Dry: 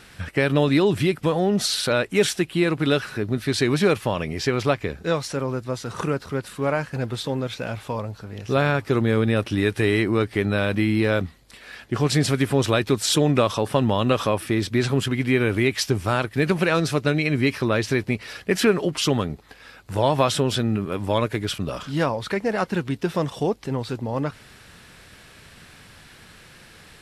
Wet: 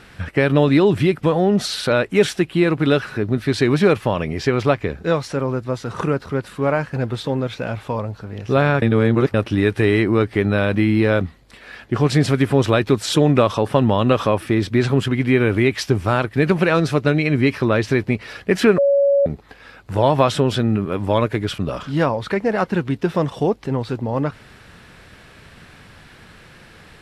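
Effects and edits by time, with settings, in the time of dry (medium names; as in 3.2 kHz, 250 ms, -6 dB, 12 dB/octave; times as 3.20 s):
8.82–9.34 s: reverse
18.78–19.26 s: bleep 561 Hz -16 dBFS
whole clip: treble shelf 3.9 kHz -10.5 dB; trim +4.5 dB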